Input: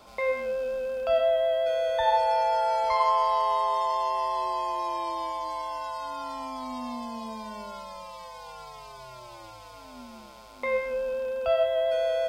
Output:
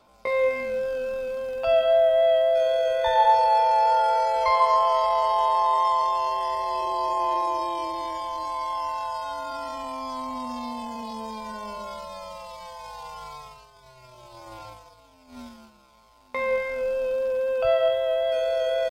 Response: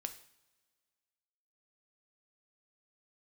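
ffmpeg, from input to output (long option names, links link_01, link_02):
-af "aphaser=in_gain=1:out_gain=1:delay=2.4:decay=0.3:speed=0.21:type=triangular,agate=range=-12dB:threshold=-43dB:ratio=16:detection=peak,atempo=0.65,volume=3dB"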